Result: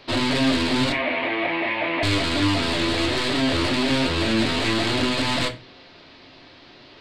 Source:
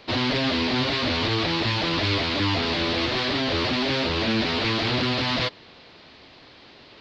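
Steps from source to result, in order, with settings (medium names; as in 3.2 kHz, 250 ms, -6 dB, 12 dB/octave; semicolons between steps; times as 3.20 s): tracing distortion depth 0.035 ms; 0.92–2.03 s: cabinet simulation 350–2600 Hz, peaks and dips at 400 Hz -4 dB, 660 Hz +7 dB, 1.4 kHz -7 dB, 2.2 kHz +9 dB; reverberation RT60 0.30 s, pre-delay 3 ms, DRR 4.5 dB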